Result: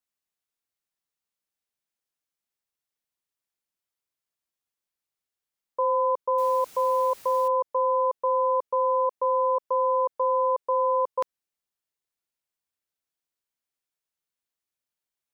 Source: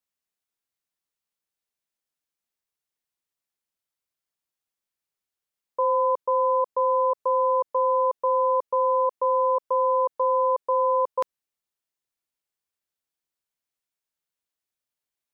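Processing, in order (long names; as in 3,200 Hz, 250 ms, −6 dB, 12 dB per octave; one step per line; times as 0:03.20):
0:06.38–0:07.48: bit-depth reduction 8 bits, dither triangular
level −1.5 dB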